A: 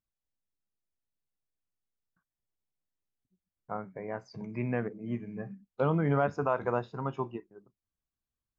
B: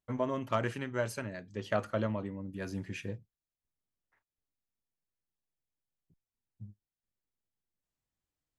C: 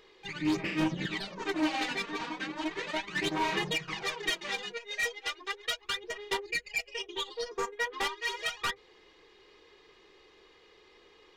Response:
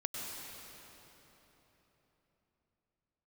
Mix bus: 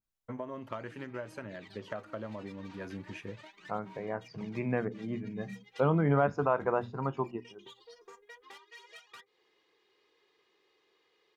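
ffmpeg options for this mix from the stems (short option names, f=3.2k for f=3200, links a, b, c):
-filter_complex "[0:a]bandreject=f=60:t=h:w=6,bandreject=f=120:t=h:w=6,bandreject=f=180:t=h:w=6,bandreject=f=240:t=h:w=6,volume=1dB,asplit=2[a][b];[1:a]agate=range=-33dB:threshold=-52dB:ratio=3:detection=peak,highshelf=f=3.3k:g=-11,adelay=200,volume=1dB[c];[2:a]highpass=84,acompressor=threshold=-37dB:ratio=6,adelay=500,volume=-12dB[d];[b]apad=whole_len=523382[e];[d][e]sidechaincompress=threshold=-39dB:ratio=8:attack=6.7:release=167[f];[c][f]amix=inputs=2:normalize=0,lowshelf=f=170:g=-8.5,acompressor=threshold=-36dB:ratio=6,volume=0dB[g];[a][g]amix=inputs=2:normalize=0,adynamicequalizer=threshold=0.00282:dfrequency=2500:dqfactor=0.7:tfrequency=2500:tqfactor=0.7:attack=5:release=100:ratio=0.375:range=2.5:mode=cutabove:tftype=highshelf"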